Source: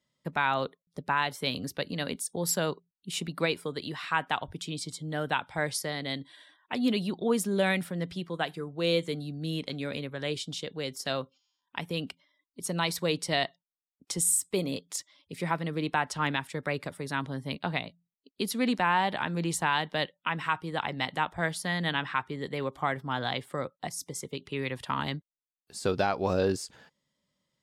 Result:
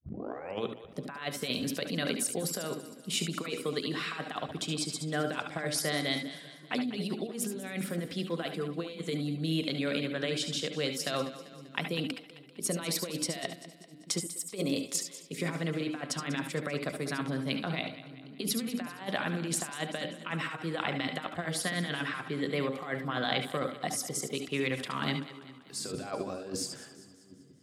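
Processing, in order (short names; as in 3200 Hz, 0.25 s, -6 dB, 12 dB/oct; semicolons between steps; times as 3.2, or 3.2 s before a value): tape start at the beginning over 0.72 s; notches 60/120/180/240/300/360/420/480/540/600 Hz; negative-ratio compressor -32 dBFS, ratio -0.5; HPF 140 Hz 12 dB/oct; notch 890 Hz, Q 5.1; split-band echo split 360 Hz, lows 0.781 s, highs 0.195 s, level -15 dB; on a send at -7.5 dB: reverb, pre-delay 63 ms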